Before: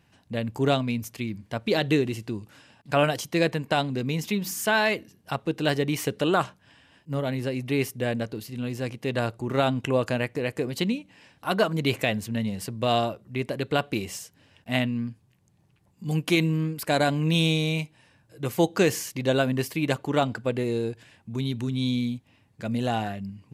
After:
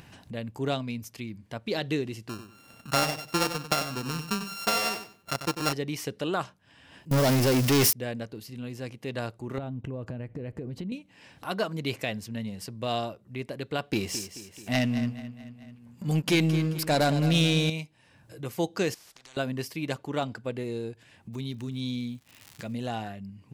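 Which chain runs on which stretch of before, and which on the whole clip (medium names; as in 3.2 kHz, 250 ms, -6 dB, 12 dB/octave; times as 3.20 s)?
2.29–5.73 s: sorted samples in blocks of 32 samples + transient shaper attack +5 dB, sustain -3 dB + feedback delay 94 ms, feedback 21%, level -9.5 dB
7.11–7.93 s: zero-crossing glitches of -20 dBFS + waveshaping leveller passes 5
9.58–10.92 s: tilt EQ -4 dB/octave + compression, threshold -26 dBFS
13.91–17.70 s: waveshaping leveller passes 2 + feedback delay 217 ms, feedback 40%, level -12 dB
18.94–19.37 s: compression 10:1, threshold -35 dBFS + distance through air 82 m + spectrum-flattening compressor 10:1
21.32–22.80 s: band-stop 1.5 kHz, Q 13 + crackle 180 per s -43 dBFS + tape noise reduction on one side only encoder only
whole clip: dynamic bell 5.2 kHz, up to +7 dB, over -51 dBFS, Q 2.8; upward compressor, threshold -30 dBFS; trim -6.5 dB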